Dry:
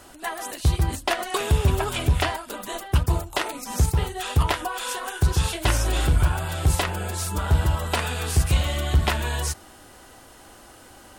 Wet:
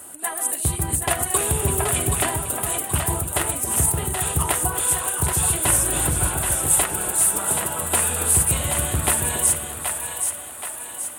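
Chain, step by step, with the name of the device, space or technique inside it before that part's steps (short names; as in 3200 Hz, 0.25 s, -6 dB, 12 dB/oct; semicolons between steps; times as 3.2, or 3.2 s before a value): 6.27–7.82 HPF 210 Hz 12 dB/oct; budget condenser microphone (HPF 100 Hz 12 dB/oct; resonant high shelf 7000 Hz +10.5 dB, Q 3); split-band echo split 530 Hz, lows 0.277 s, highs 0.777 s, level -5.5 dB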